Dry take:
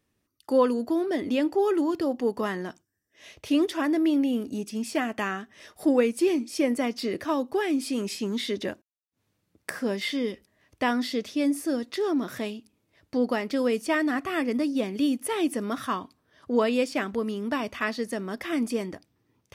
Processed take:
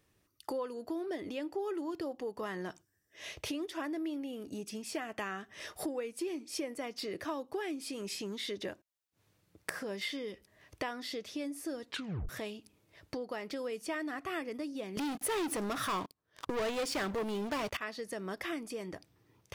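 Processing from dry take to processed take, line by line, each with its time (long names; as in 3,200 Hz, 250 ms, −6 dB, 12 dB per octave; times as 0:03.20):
0:11.88: tape stop 0.41 s
0:14.97–0:17.77: leveller curve on the samples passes 5
whole clip: downward compressor 5 to 1, threshold −39 dBFS; parametric band 240 Hz −9.5 dB 0.36 octaves; level +3.5 dB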